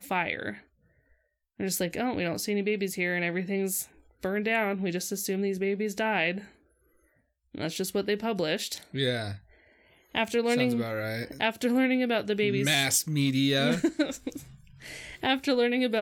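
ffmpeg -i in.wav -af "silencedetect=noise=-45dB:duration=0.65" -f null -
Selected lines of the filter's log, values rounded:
silence_start: 0.60
silence_end: 1.60 | silence_duration: 0.99
silence_start: 6.48
silence_end: 7.54 | silence_duration: 1.06
silence_start: 9.38
silence_end: 10.14 | silence_duration: 0.77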